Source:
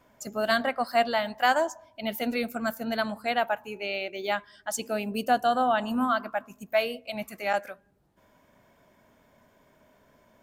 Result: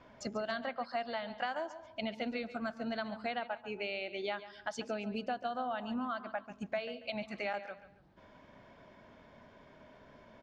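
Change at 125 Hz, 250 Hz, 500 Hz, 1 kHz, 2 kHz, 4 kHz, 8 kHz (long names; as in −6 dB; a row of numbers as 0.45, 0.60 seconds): −6.0, −8.5, −10.0, −12.0, −10.5, −10.0, −17.0 decibels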